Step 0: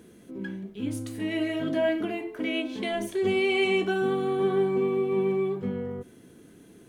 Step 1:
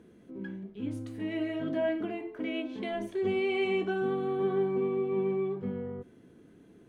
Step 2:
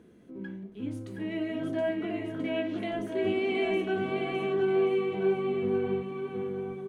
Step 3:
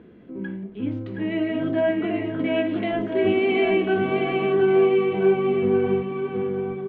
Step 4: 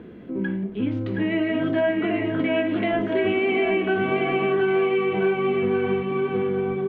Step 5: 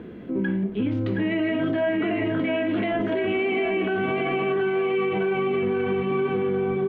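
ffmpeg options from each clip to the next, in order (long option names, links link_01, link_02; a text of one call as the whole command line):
ffmpeg -i in.wav -af "lowpass=frequency=2000:poles=1,volume=-4dB" out.wav
ffmpeg -i in.wav -af "aecho=1:1:720|1332|1852|2294|2670:0.631|0.398|0.251|0.158|0.1" out.wav
ffmpeg -i in.wav -af "lowpass=frequency=3300:width=0.5412,lowpass=frequency=3300:width=1.3066,volume=8dB" out.wav
ffmpeg -i in.wav -filter_complex "[0:a]acrossover=split=1100|2700[link_01][link_02][link_03];[link_01]acompressor=threshold=-28dB:ratio=4[link_04];[link_02]acompressor=threshold=-35dB:ratio=4[link_05];[link_03]acompressor=threshold=-53dB:ratio=4[link_06];[link_04][link_05][link_06]amix=inputs=3:normalize=0,volume=6.5dB" out.wav
ffmpeg -i in.wav -af "alimiter=limit=-19.5dB:level=0:latency=1:release=29,volume=2.5dB" out.wav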